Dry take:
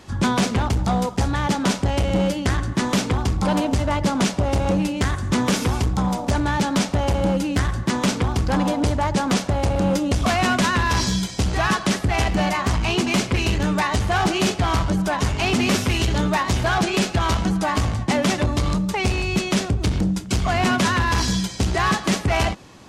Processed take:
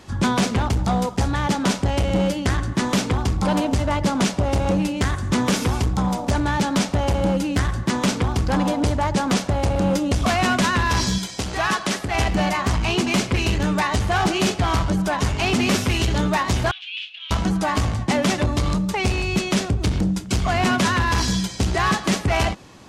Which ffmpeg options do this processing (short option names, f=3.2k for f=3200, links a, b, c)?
-filter_complex "[0:a]asettb=1/sr,asplit=3[a][b][c];[a]atrim=end=11.184[d];[b]atrim=start=11.18:end=12.15,asetpts=PTS-STARTPTS,afade=t=in:d=0.004:c=qsin,afade=t=out:st=0.966:d=0.004:c=qsin,lowshelf=f=210:g=-10[e];[c]atrim=start=12.146[f];[d][e]acrossfade=d=0.004:c1=hsin:c2=qsin[g];[g][f]acrossfade=d=0.004:c1=qsin:c2=hsin,asettb=1/sr,asplit=3[h][i][j];[h]atrim=end=16.714[k];[i]atrim=start=16.71:end=17.31,asetpts=PTS-STARTPTS,afade=t=in:d=0.004:c=qsin,afade=t=out:st=0.596:d=0.004:c=qsin,asuperpass=centerf=3000:order=4:qfactor=3.3[l];[j]atrim=start=17.306[m];[k][l]acrossfade=d=0.004:c1=hsin:c2=qsin[n];[n][m]acrossfade=d=0.004:c1=qsin:c2=hsin"